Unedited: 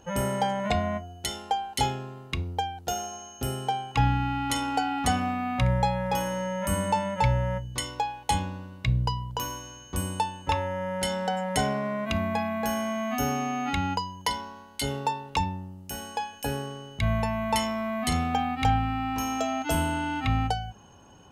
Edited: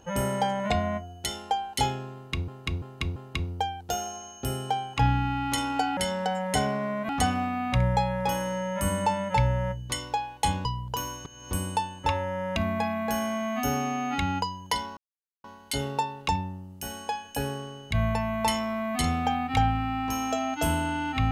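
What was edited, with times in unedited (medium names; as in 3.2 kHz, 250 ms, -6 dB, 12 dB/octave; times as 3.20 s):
2.14–2.48 s: loop, 4 plays
8.51–9.08 s: delete
9.68–9.94 s: reverse
10.99–12.11 s: move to 4.95 s
14.52 s: insert silence 0.47 s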